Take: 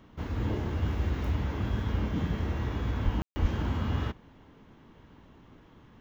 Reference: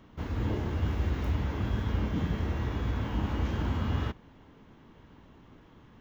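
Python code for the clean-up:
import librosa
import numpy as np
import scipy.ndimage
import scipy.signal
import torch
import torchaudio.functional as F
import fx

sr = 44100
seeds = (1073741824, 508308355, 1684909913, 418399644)

y = fx.fix_deplosive(x, sr, at_s=(3.04, 3.41))
y = fx.fix_ambience(y, sr, seeds[0], print_start_s=5.45, print_end_s=5.95, start_s=3.22, end_s=3.36)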